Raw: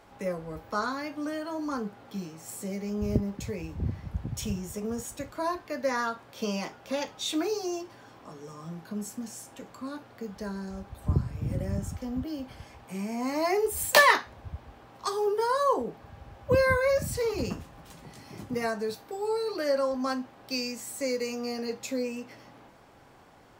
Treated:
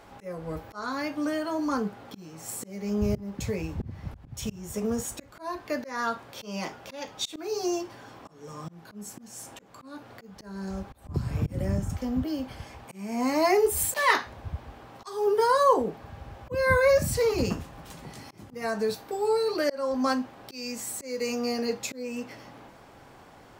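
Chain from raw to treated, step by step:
volume swells 292 ms
0:11.14–0:11.90: multiband upward and downward compressor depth 100%
level +4.5 dB

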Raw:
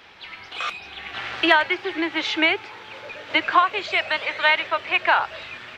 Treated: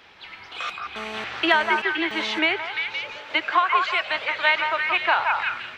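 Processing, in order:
0:03.18–0:04.10: low-shelf EQ 210 Hz −10 dB
echo through a band-pass that steps 173 ms, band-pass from 1,100 Hz, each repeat 0.7 octaves, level −1 dB
0:00.96–0:02.39: phone interference −33 dBFS
level −2.5 dB

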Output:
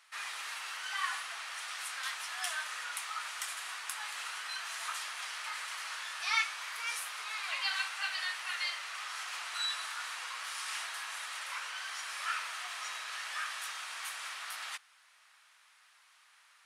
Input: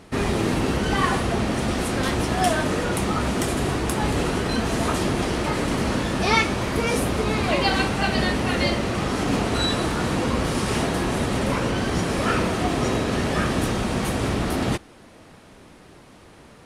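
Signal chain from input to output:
high-pass filter 1,200 Hz 24 dB per octave
level −8.5 dB

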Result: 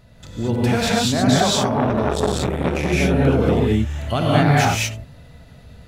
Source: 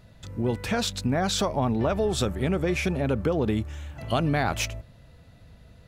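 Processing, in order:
reverb whose tail is shaped and stops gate 250 ms rising, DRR −5.5 dB
0:01.56–0:02.93: saturating transformer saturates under 860 Hz
level +2 dB

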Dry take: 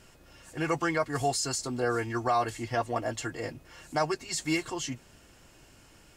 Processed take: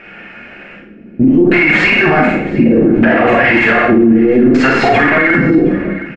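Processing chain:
played backwards from end to start
noise gate with hold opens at −42 dBFS
compressor whose output falls as the input rises −37 dBFS, ratio −1
thirty-one-band graphic EQ 100 Hz −11 dB, 200 Hz +11 dB, 1,000 Hz −12 dB, 2,500 Hz +10 dB
mid-hump overdrive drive 20 dB, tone 1,400 Hz, clips at −18.5 dBFS
soft clipping −28.5 dBFS, distortion −15 dB
auto-filter low-pass square 0.66 Hz 310–1,900 Hz
single-tap delay 716 ms −22 dB
four-comb reverb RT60 0.55 s, combs from 31 ms, DRR −2 dB
boost into a limiter +25 dB
level −1 dB

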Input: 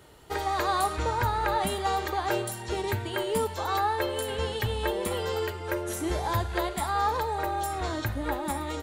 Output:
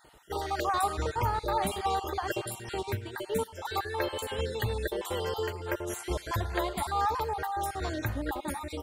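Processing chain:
time-frequency cells dropped at random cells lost 32%
on a send: tape delay 82 ms, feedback 61%, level −24 dB, low-pass 2,800 Hz
0:02.83–0:03.65: on the sum: expander for the loud parts 1.5 to 1, over −36 dBFS
level −1.5 dB

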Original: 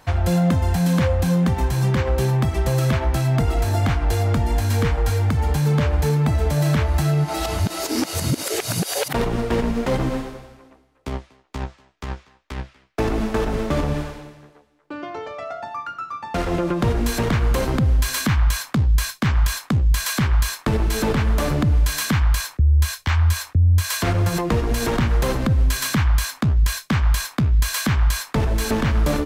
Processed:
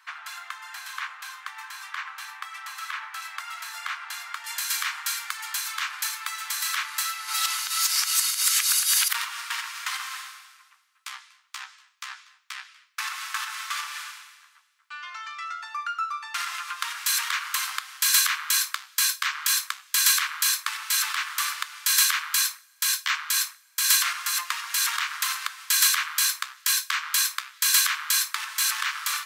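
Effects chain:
Butterworth high-pass 1,100 Hz 48 dB per octave
high-shelf EQ 3,400 Hz −9.5 dB, from 0:03.22 −4.5 dB, from 0:04.44 +8 dB
coupled-rooms reverb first 0.3 s, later 1.7 s, from −22 dB, DRR 12 dB

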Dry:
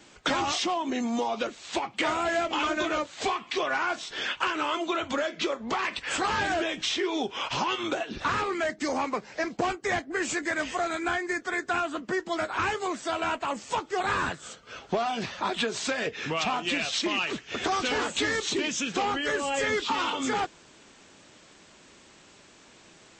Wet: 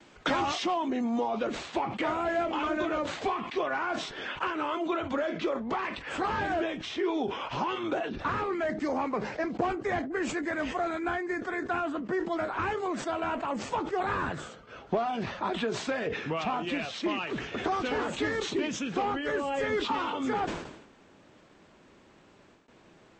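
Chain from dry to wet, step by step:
noise gate with hold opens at −44 dBFS
low-pass filter 2,400 Hz 6 dB per octave, from 0:00.88 1,100 Hz
level that may fall only so fast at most 63 dB per second

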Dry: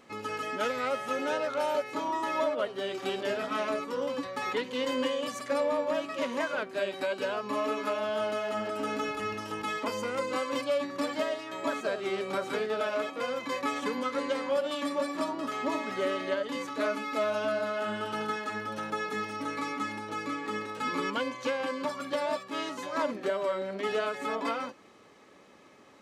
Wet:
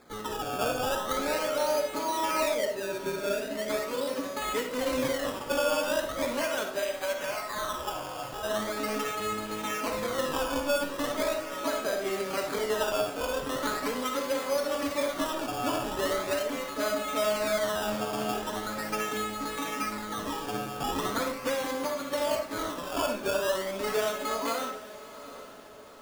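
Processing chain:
0:02.55–0:03.70: time-frequency box erased 660–3,500 Hz
0:06.81–0:08.42: high-pass filter 480 Hz → 1,300 Hz 24 dB per octave
sample-and-hold swept by an LFO 15×, swing 100% 0.4 Hz
feedback delay with all-pass diffusion 806 ms, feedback 47%, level −15 dB
on a send at −5 dB: convolution reverb RT60 0.40 s, pre-delay 15 ms

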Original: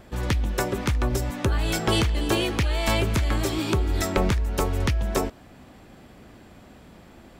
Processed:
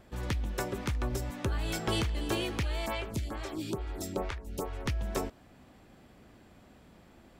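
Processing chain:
0:02.86–0:04.86: phaser with staggered stages 2.3 Hz
level −8.5 dB

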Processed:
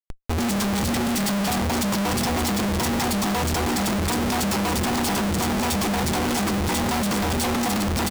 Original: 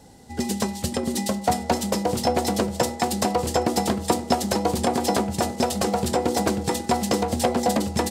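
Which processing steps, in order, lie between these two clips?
comb filter 0.9 ms, depth 70%
comparator with hysteresis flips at −36 dBFS

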